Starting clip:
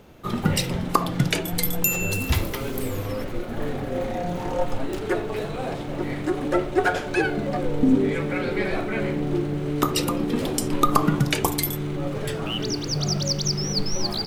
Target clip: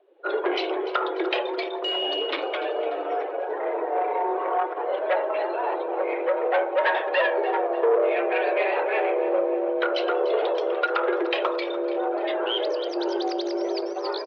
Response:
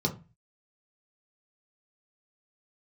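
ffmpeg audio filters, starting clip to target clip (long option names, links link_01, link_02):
-af "afftdn=noise_reduction=20:noise_floor=-38,dynaudnorm=framelen=130:gausssize=3:maxgain=4.5dB,aresample=16000,asoftclip=type=tanh:threshold=-16.5dB,aresample=44100,aecho=1:1:294|588|882|1176:0.188|0.0885|0.0416|0.0196,highpass=frequency=160:width_type=q:width=0.5412,highpass=frequency=160:width_type=q:width=1.307,lowpass=frequency=3600:width_type=q:width=0.5176,lowpass=frequency=3600:width_type=q:width=0.7071,lowpass=frequency=3600:width_type=q:width=1.932,afreqshift=200"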